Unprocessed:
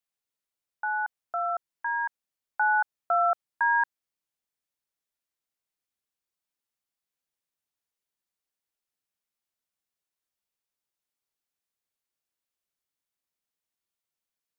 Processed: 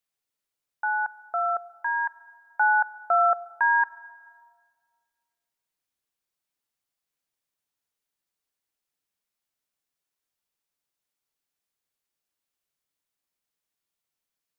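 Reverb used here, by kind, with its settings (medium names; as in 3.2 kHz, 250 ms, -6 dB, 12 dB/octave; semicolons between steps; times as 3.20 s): simulated room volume 3700 m³, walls mixed, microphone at 0.37 m; trim +2.5 dB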